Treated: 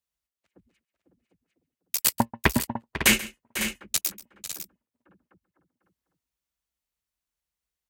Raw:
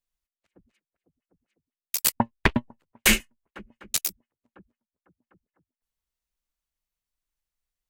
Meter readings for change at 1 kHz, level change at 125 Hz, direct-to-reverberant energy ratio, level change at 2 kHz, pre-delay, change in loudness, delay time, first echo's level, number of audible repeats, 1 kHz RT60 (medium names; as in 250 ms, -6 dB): +0.5 dB, +0.5 dB, no reverb, +0.5 dB, no reverb, -1.0 dB, 135 ms, -18.0 dB, 3, no reverb